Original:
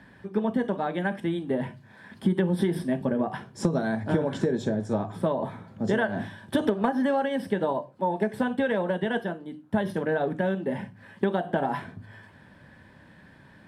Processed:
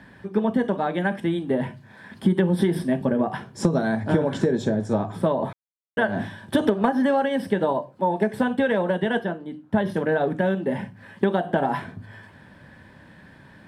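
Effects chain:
0:05.53–0:05.97: silence
0:09.19–0:09.92: high-shelf EQ 6,300 Hz −8.5 dB
level +4 dB

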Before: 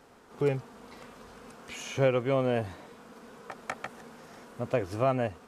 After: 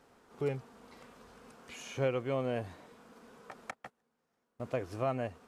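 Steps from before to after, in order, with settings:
0:03.71–0:04.60: noise gate −37 dBFS, range −25 dB
level −6.5 dB

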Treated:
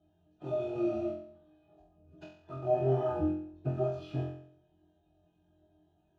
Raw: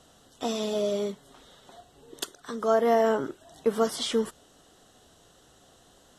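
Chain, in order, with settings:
spectral magnitudes quantised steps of 30 dB
high-shelf EQ 3,200 Hz −4.5 dB
phase-vocoder pitch shift with formants kept −10 semitones
in parallel at −3.5 dB: bit-depth reduction 6 bits, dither none
on the sum: resonances in every octave D#, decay 0.12 s
on a send: flutter between parallel walls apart 3.9 metres, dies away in 0.6 s

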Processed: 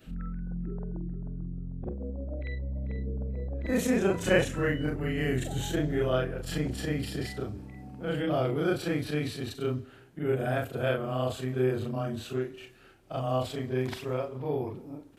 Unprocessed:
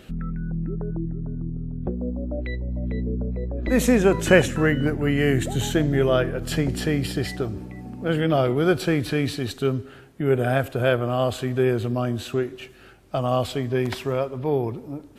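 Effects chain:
every overlapping window played backwards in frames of 94 ms
level −4.5 dB

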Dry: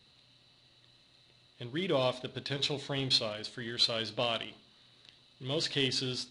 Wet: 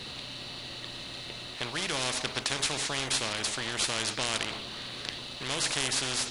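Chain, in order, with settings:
every bin compressed towards the loudest bin 4 to 1
level +3 dB

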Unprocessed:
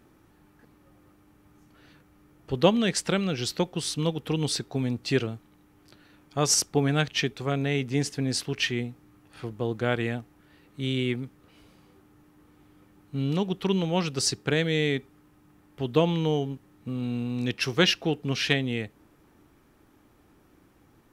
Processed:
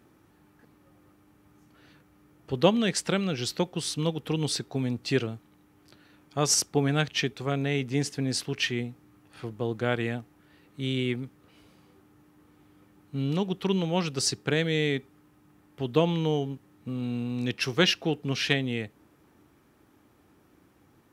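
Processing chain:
high-pass filter 65 Hz
level −1 dB

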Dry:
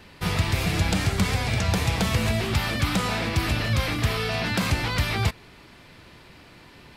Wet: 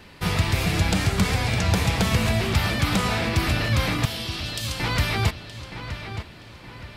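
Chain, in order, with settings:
0:04.05–0:04.80: Chebyshev high-pass filter 3,000 Hz, order 4
feedback echo with a low-pass in the loop 921 ms, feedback 43%, low-pass 4,400 Hz, level −10 dB
level +1.5 dB

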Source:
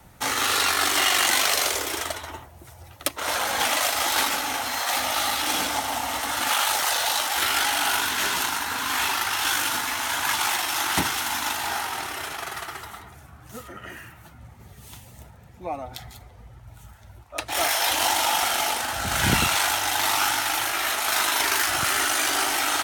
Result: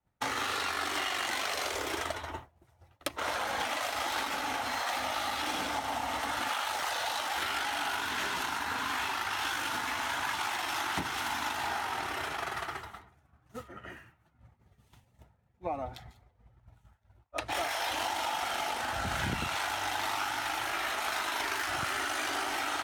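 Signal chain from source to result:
low-pass filter 2,700 Hz 6 dB per octave
downward expander −34 dBFS
downward compressor, threshold −30 dBFS, peak gain reduction 13 dB

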